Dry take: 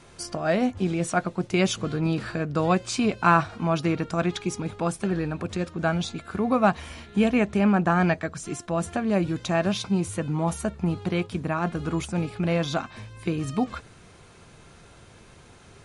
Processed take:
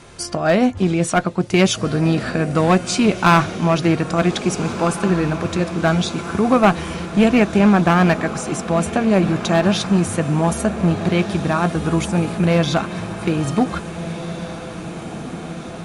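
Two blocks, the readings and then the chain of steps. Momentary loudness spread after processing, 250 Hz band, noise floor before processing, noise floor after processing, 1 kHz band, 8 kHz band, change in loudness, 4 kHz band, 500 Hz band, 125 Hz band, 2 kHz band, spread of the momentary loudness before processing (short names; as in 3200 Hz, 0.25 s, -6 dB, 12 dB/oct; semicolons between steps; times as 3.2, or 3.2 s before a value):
13 LU, +8.0 dB, -51 dBFS, -31 dBFS, +7.0 dB, +8.5 dB, +7.5 dB, +9.0 dB, +8.0 dB, +8.5 dB, +7.0 dB, 9 LU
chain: one-sided clip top -18.5 dBFS; on a send: diffused feedback echo 1.716 s, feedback 63%, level -12 dB; on the sum: gain +8 dB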